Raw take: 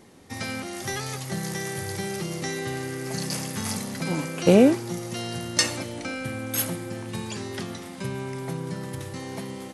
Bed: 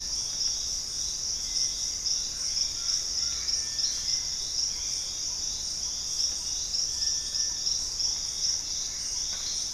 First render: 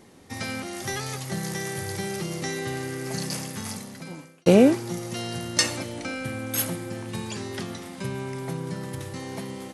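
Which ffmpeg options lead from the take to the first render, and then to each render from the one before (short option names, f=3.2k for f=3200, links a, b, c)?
-filter_complex "[0:a]asplit=2[a][b];[a]atrim=end=4.46,asetpts=PTS-STARTPTS,afade=t=out:st=3.16:d=1.3[c];[b]atrim=start=4.46,asetpts=PTS-STARTPTS,afade=t=in:d=0.004:c=hsin[d];[c][d]concat=n=2:v=0:a=1"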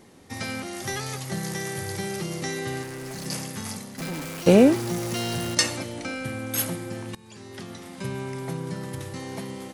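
-filter_complex "[0:a]asettb=1/sr,asplit=3[a][b][c];[a]atrim=end=2.834[d];[b]atrim=start=2.83:end=3.26,asetpts=PTS-STARTPTS,afade=t=in:d=0.004:c=qsin,afade=t=out:st=0.426:d=0.004:c=qsin,asoftclip=type=hard:threshold=-33.5dB[e];[c]atrim=start=3.256[f];[d][e]acrossfade=d=0.004:c1=hsin:c2=qsin[g];[g][f]acrossfade=d=0.004:c1=qsin:c2=hsin,asettb=1/sr,asplit=3[h][i][j];[h]atrim=end=3.984[k];[i]atrim=start=3.98:end=5.55,asetpts=PTS-STARTPTS,afade=t=in:d=0.004:c=qsin,afade=t=out:st=1.566:d=0.004:c=qsin,aeval=exprs='val(0)+0.5*0.0316*sgn(val(0))':c=same[l];[j]atrim=start=5.546[m];[k][l]acrossfade=d=0.004:c1=hsin:c2=qsin[n];[n][m]acrossfade=d=0.004:c1=qsin:c2=hsin,asplit=2[o][p];[o]atrim=end=7.15,asetpts=PTS-STARTPTS,afade=t=out:st=7.146:d=0.004:c=hsin:silence=0.0749894[q];[p]atrim=start=7.15,asetpts=PTS-STARTPTS,afade=t=in:d=0.96:silence=0.0749894[r];[q][r]concat=n=2:v=0:a=1"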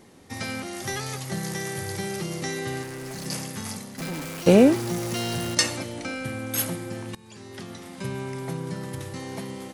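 -af anull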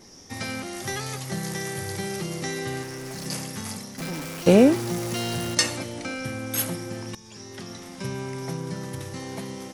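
-filter_complex "[1:a]volume=-19.5dB[a];[0:a][a]amix=inputs=2:normalize=0"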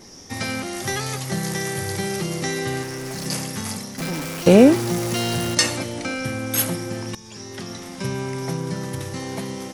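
-af "volume=5dB,alimiter=limit=-2dB:level=0:latency=1"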